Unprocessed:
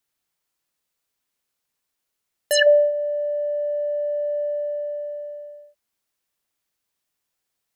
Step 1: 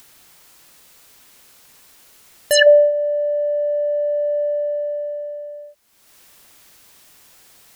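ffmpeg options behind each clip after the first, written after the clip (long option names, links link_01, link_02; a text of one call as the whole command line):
ffmpeg -i in.wav -af "acompressor=mode=upward:threshold=-33dB:ratio=2.5,volume=4.5dB" out.wav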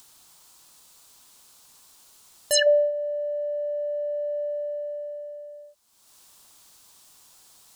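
ffmpeg -i in.wav -af "equalizer=frequency=500:width_type=o:width=1:gain=-3,equalizer=frequency=1000:width_type=o:width=1:gain=6,equalizer=frequency=2000:width_type=o:width=1:gain=-7,equalizer=frequency=4000:width_type=o:width=1:gain=4,equalizer=frequency=8000:width_type=o:width=1:gain=6,volume=-7.5dB" out.wav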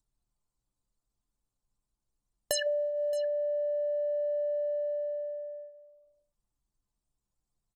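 ffmpeg -i in.wav -af "acompressor=threshold=-30dB:ratio=8,aecho=1:1:622:0.178,anlmdn=0.158,volume=2dB" out.wav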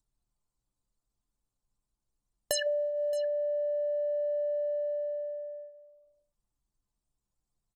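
ffmpeg -i in.wav -af anull out.wav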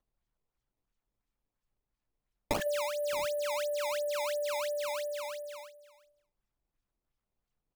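ffmpeg -i in.wav -af "acrusher=samples=17:mix=1:aa=0.000001:lfo=1:lforange=27.2:lforate=2.9,volume=-2.5dB" out.wav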